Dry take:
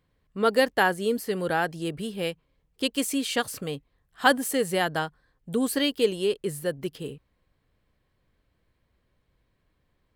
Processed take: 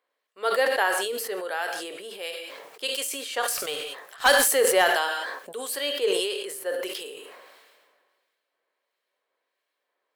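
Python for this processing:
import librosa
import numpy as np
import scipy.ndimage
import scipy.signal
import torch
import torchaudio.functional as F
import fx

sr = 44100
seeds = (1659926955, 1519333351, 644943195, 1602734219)

y = scipy.signal.sosfilt(scipy.signal.butter(4, 470.0, 'highpass', fs=sr, output='sos'), x)
y = fx.leveller(y, sr, passes=2, at=(3.48, 4.95))
y = fx.harmonic_tremolo(y, sr, hz=1.5, depth_pct=50, crossover_hz=2000.0)
y = fx.rev_gated(y, sr, seeds[0], gate_ms=200, shape='falling', drr_db=10.0)
y = fx.sustainer(y, sr, db_per_s=32.0)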